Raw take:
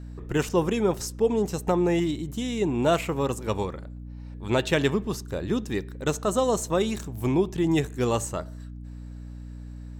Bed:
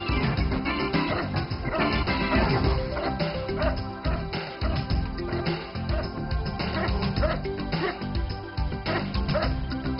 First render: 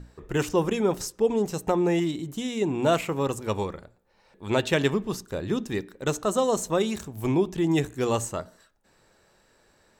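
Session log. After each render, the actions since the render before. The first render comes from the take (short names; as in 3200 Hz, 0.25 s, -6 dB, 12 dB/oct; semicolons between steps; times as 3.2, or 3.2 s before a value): notches 60/120/180/240/300 Hz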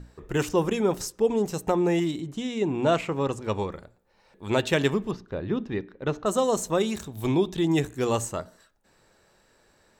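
2.2–3.72 air absorption 63 m; 5.11–6.26 air absorption 270 m; 7.03–7.67 bell 3700 Hz +12 dB 0.29 oct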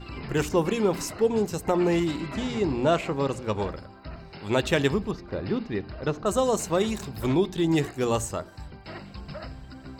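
add bed -13 dB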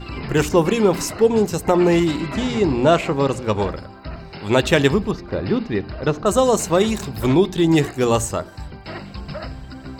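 gain +7.5 dB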